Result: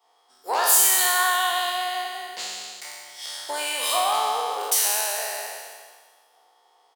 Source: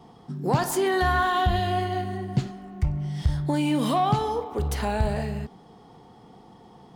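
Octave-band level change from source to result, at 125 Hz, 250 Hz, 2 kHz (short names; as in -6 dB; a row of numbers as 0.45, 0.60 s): under -40 dB, -22.5 dB, +4.5 dB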